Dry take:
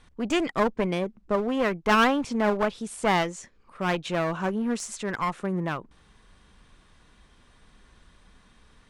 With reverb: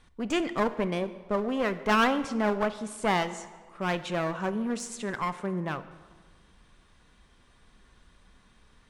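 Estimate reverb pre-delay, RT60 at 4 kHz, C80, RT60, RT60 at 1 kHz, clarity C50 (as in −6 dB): 5 ms, 1.1 s, 15.0 dB, 1.5 s, 1.5 s, 14.0 dB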